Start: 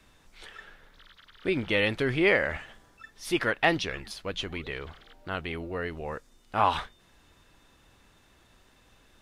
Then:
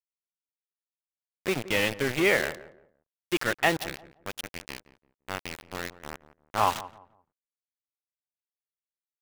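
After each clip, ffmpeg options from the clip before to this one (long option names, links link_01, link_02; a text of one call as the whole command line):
ffmpeg -i in.wav -filter_complex "[0:a]highpass=frequency=87:width=0.5412,highpass=frequency=87:width=1.3066,aeval=exprs='val(0)*gte(abs(val(0)),0.0473)':channel_layout=same,asplit=2[link_01][link_02];[link_02]adelay=172,lowpass=frequency=1100:poles=1,volume=-15dB,asplit=2[link_03][link_04];[link_04]adelay=172,lowpass=frequency=1100:poles=1,volume=0.3,asplit=2[link_05][link_06];[link_06]adelay=172,lowpass=frequency=1100:poles=1,volume=0.3[link_07];[link_01][link_03][link_05][link_07]amix=inputs=4:normalize=0" out.wav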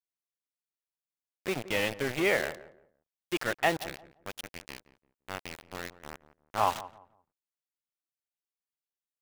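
ffmpeg -i in.wav -af "adynamicequalizer=threshold=0.0141:dfrequency=680:dqfactor=1.8:tfrequency=680:tqfactor=1.8:attack=5:release=100:ratio=0.375:range=2:mode=boostabove:tftype=bell,volume=-4.5dB" out.wav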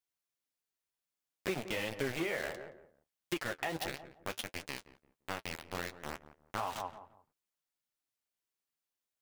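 ffmpeg -i in.wav -af "alimiter=limit=-21dB:level=0:latency=1:release=156,acompressor=threshold=-35dB:ratio=6,flanger=delay=6.2:depth=8.5:regen=-37:speed=1.5:shape=triangular,volume=7dB" out.wav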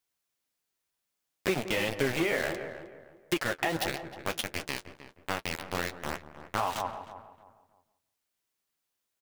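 ffmpeg -i in.wav -filter_complex "[0:a]asplit=2[link_01][link_02];[link_02]adelay=311,lowpass=frequency=1700:poles=1,volume=-12dB,asplit=2[link_03][link_04];[link_04]adelay=311,lowpass=frequency=1700:poles=1,volume=0.32,asplit=2[link_05][link_06];[link_06]adelay=311,lowpass=frequency=1700:poles=1,volume=0.32[link_07];[link_01][link_03][link_05][link_07]amix=inputs=4:normalize=0,volume=7dB" out.wav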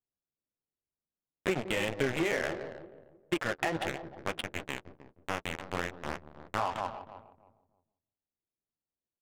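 ffmpeg -i in.wav -af "aresample=8000,acrusher=bits=4:mode=log:mix=0:aa=0.000001,aresample=44100,adynamicsmooth=sensitivity=6:basefreq=530,volume=-1.5dB" out.wav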